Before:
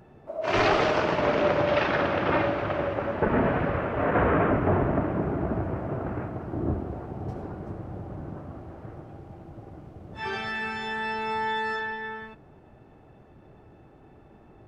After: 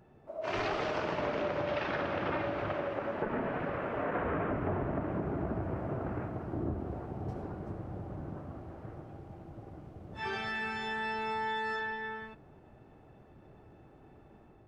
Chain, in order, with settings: compressor 5:1, threshold -26 dBFS, peak gain reduction 7.5 dB; 2.73–4.25 bell 71 Hz -9.5 dB 1.6 oct; AGC gain up to 4 dB; gain -8 dB

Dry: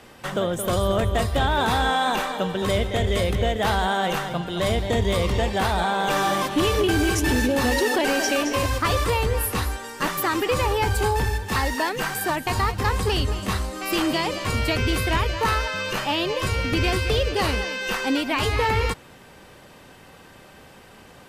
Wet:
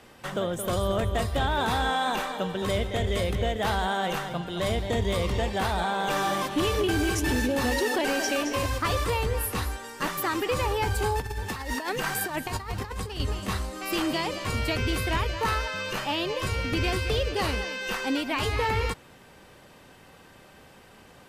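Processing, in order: 11.2–13.2 negative-ratio compressor -26 dBFS, ratio -0.5; gain -4.5 dB

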